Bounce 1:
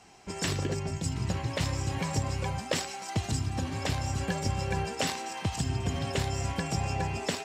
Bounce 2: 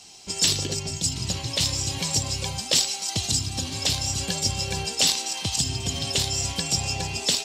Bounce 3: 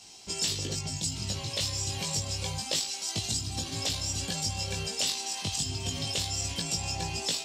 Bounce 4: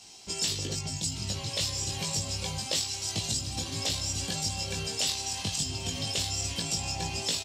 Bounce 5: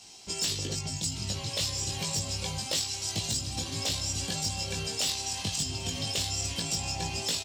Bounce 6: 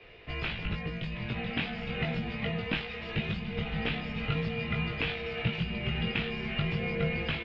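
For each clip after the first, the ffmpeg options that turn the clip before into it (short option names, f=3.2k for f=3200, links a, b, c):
-af "highshelf=f=2.6k:t=q:w=1.5:g=13"
-af "acompressor=threshold=-27dB:ratio=2,flanger=delay=18:depth=2.2:speed=0.28"
-af "aecho=1:1:1169:0.316"
-af "aeval=exprs='0.0891*(abs(mod(val(0)/0.0891+3,4)-2)-1)':c=same"
-af "asubboost=boost=6.5:cutoff=130,highpass=f=180:t=q:w=0.5412,highpass=f=180:t=q:w=1.307,lowpass=f=2.9k:t=q:w=0.5176,lowpass=f=2.9k:t=q:w=0.7071,lowpass=f=2.9k:t=q:w=1.932,afreqshift=-320,volume=7dB"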